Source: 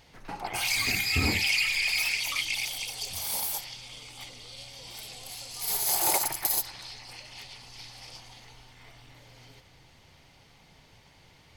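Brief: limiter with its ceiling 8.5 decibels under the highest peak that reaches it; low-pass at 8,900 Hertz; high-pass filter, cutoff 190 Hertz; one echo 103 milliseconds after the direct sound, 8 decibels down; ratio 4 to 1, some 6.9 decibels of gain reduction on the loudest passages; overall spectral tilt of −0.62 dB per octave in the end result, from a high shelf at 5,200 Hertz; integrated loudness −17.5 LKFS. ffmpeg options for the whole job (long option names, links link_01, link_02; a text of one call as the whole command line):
ffmpeg -i in.wav -af "highpass=190,lowpass=8900,highshelf=frequency=5200:gain=5,acompressor=threshold=-30dB:ratio=4,alimiter=level_in=1dB:limit=-24dB:level=0:latency=1,volume=-1dB,aecho=1:1:103:0.398,volume=17dB" out.wav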